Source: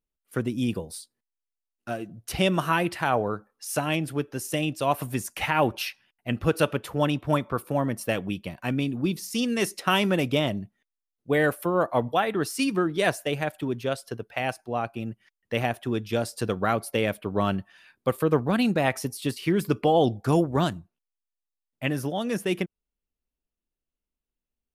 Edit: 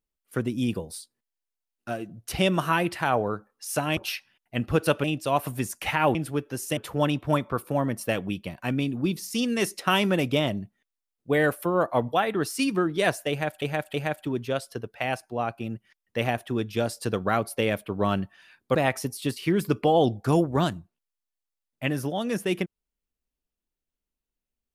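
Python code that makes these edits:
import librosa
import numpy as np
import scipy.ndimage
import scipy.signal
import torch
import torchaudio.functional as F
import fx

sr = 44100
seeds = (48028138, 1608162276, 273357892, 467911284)

y = fx.edit(x, sr, fx.swap(start_s=3.97, length_s=0.62, other_s=5.7, other_length_s=1.07),
    fx.repeat(start_s=13.3, length_s=0.32, count=3),
    fx.cut(start_s=18.11, length_s=0.64), tone=tone)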